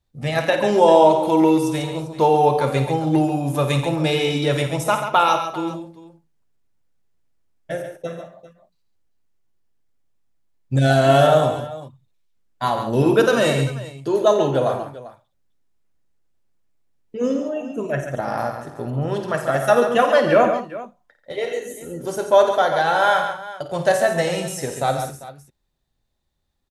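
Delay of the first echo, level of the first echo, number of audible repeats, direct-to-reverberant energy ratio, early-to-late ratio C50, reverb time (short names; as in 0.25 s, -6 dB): 52 ms, -10.0 dB, 5, none, none, none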